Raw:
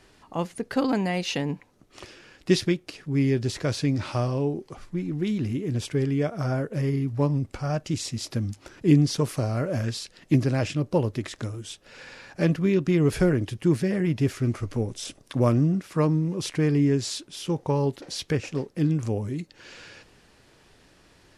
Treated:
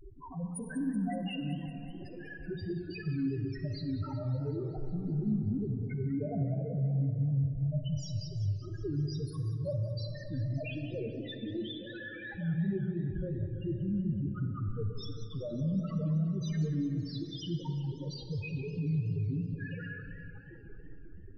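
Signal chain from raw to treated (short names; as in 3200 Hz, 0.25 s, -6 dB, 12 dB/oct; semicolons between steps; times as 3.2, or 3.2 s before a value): 10.57–12.18 Chebyshev band-pass 240–4400 Hz, order 2; power-law curve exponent 0.5; 8.04–8.89 comb 2.3 ms, depth 60%; limiter -18.5 dBFS, peak gain reduction 11 dB; notches 60/120/180/240/300/360/420 Hz; loudest bins only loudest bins 2; digital reverb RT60 3 s, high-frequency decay 0.5×, pre-delay 5 ms, DRR 5.5 dB; warbling echo 0.188 s, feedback 68%, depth 201 cents, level -14 dB; gain -7 dB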